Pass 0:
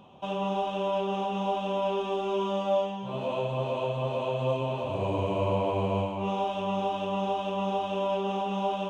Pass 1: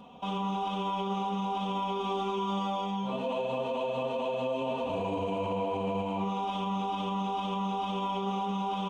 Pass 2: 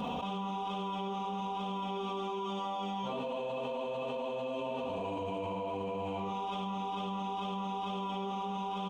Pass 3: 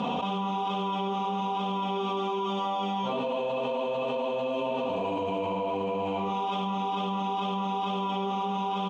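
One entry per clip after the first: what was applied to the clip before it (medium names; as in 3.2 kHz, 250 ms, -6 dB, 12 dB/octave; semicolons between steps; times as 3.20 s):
comb 4.2 ms, depth 90%; peak limiter -24 dBFS, peak gain reduction 9 dB
delay 74 ms -5.5 dB; level flattener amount 100%; trim -8.5 dB
band-pass 130–6000 Hz; trim +7 dB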